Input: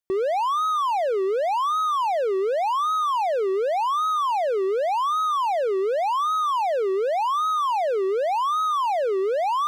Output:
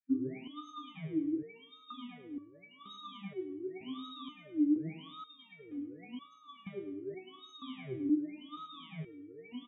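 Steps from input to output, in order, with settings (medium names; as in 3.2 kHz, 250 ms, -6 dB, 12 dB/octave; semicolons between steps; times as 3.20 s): octave divider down 2 oct, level -3 dB; spectral gate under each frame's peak -30 dB strong; dynamic bell 280 Hz, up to +8 dB, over -41 dBFS, Q 1.8; vowel filter i; formant shift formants -5 st; on a send: feedback delay 104 ms, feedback 36%, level -9.5 dB; on the sum: resonator arpeggio 2.1 Hz 130–570 Hz; trim +16.5 dB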